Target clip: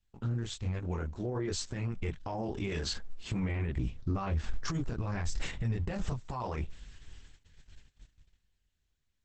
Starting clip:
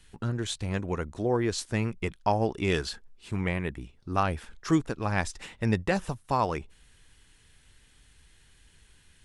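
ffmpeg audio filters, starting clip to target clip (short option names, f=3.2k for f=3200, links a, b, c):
-filter_complex "[0:a]dynaudnorm=f=410:g=9:m=15.5dB,flanger=delay=22.5:depth=3.2:speed=1.3,agate=range=-22dB:threshold=-51dB:ratio=16:detection=peak,asettb=1/sr,asplit=3[a][b][c];[a]atrim=end=3.434[d];[b]atrim=start=3.43:end=6.09,asetpts=PTS-STARTPTS,afade=t=in:d=0.004:c=qsin,afade=t=out:st=2.656:d=0.004:c=qsin,lowshelf=f=230:g=5.5[e];[c]atrim=start=6.086[f];[d][e]acrossfade=d=0.004:c1=hsin:c2=qsin[g];[g][f]acrossfade=d=0.004:c1=qsin:c2=hsin,acompressor=threshold=-21dB:ratio=10,alimiter=limit=-24dB:level=0:latency=1:release=33,lowshelf=f=110:g=10,volume=-3.5dB" -ar 48000 -c:a libopus -b:a 10k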